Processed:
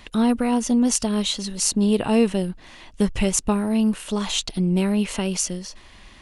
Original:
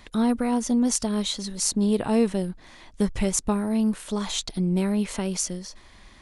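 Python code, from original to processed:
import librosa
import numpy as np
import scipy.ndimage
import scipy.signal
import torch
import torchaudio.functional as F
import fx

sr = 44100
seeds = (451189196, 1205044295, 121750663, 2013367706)

y = fx.peak_eq(x, sr, hz=2800.0, db=8.5, octaves=0.25)
y = y * 10.0 ** (3.0 / 20.0)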